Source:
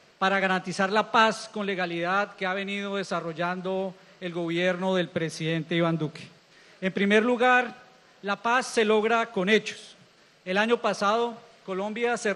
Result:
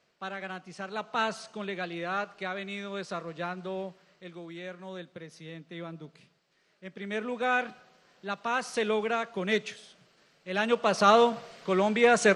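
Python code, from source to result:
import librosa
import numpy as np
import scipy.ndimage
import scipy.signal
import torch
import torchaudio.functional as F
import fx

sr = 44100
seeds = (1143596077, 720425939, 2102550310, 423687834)

y = fx.gain(x, sr, db=fx.line((0.8, -14.0), (1.39, -6.5), (3.84, -6.5), (4.63, -16.0), (6.97, -16.0), (7.55, -6.0), (10.52, -6.0), (11.16, 5.0)))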